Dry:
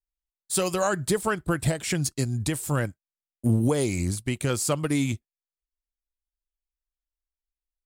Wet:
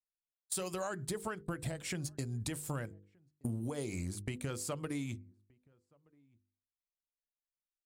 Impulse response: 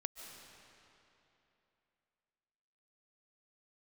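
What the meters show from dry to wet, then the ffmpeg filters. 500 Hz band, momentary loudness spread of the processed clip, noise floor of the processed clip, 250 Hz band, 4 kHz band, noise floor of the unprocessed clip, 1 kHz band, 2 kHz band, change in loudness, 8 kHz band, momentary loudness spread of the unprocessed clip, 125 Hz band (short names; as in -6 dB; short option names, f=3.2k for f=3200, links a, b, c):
-14.0 dB, 4 LU, under -85 dBFS, -13.5 dB, -12.5 dB, under -85 dBFS, -13.5 dB, -13.5 dB, -13.0 dB, -12.0 dB, 5 LU, -13.0 dB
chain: -filter_complex "[0:a]agate=range=-22dB:threshold=-33dB:ratio=16:detection=peak,bandreject=f=50:t=h:w=6,bandreject=f=100:t=h:w=6,bandreject=f=150:t=h:w=6,bandreject=f=200:t=h:w=6,bandreject=f=250:t=h:w=6,bandreject=f=300:t=h:w=6,bandreject=f=350:t=h:w=6,bandreject=f=400:t=h:w=6,bandreject=f=450:t=h:w=6,bandreject=f=500:t=h:w=6,acompressor=threshold=-37dB:ratio=6,asplit=2[a][b];[b]adelay=1224,volume=-29dB,highshelf=f=4k:g=-27.6[c];[a][c]amix=inputs=2:normalize=0,adynamicequalizer=threshold=0.00112:dfrequency=2900:dqfactor=0.7:tfrequency=2900:tqfactor=0.7:attack=5:release=100:ratio=0.375:range=1.5:mode=cutabove:tftype=highshelf,volume=1dB"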